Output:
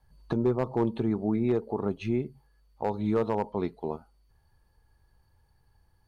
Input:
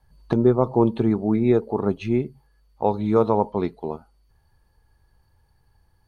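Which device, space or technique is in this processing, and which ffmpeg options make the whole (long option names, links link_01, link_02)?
clipper into limiter: -af "asoftclip=type=hard:threshold=-10dB,alimiter=limit=-14.5dB:level=0:latency=1:release=184,volume=-3.5dB"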